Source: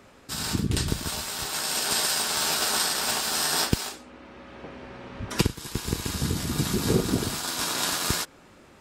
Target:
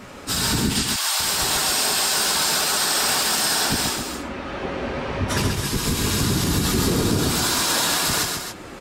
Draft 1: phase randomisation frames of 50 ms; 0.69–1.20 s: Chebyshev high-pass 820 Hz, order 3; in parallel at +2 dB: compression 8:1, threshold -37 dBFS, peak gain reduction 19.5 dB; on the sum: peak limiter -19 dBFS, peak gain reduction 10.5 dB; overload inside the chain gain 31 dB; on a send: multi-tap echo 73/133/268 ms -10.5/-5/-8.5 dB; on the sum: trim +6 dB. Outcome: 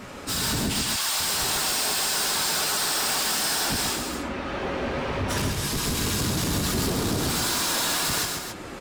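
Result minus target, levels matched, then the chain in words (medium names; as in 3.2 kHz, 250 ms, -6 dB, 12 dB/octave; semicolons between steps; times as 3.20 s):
overload inside the chain: distortion +18 dB
phase randomisation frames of 50 ms; 0.69–1.20 s: Chebyshev high-pass 820 Hz, order 3; in parallel at +2 dB: compression 8:1, threshold -37 dBFS, peak gain reduction 19.5 dB; on the sum: peak limiter -19 dBFS, peak gain reduction 10.5 dB; overload inside the chain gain 21.5 dB; on a send: multi-tap echo 73/133/268 ms -10.5/-5/-8.5 dB; on the sum: trim +6 dB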